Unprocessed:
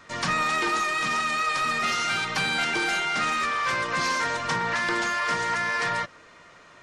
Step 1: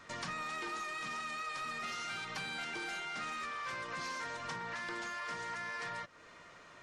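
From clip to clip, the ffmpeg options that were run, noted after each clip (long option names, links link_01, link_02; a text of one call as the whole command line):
ffmpeg -i in.wav -af "acompressor=threshold=-37dB:ratio=3,volume=-5dB" out.wav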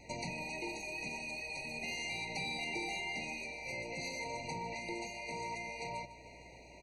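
ffmpeg -i in.wav -af "aeval=exprs='val(0)+0.000447*(sin(2*PI*60*n/s)+sin(2*PI*2*60*n/s)/2+sin(2*PI*3*60*n/s)/3+sin(2*PI*4*60*n/s)/4+sin(2*PI*5*60*n/s)/5)':channel_layout=same,aecho=1:1:151|302|453|604|755|906:0.178|0.105|0.0619|0.0365|0.0215|0.0127,afftfilt=real='re*eq(mod(floor(b*sr/1024/960),2),0)':imag='im*eq(mod(floor(b*sr/1024/960),2),0)':win_size=1024:overlap=0.75,volume=4dB" out.wav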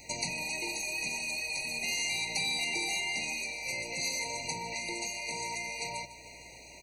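ffmpeg -i in.wav -af "crystalizer=i=5:c=0" out.wav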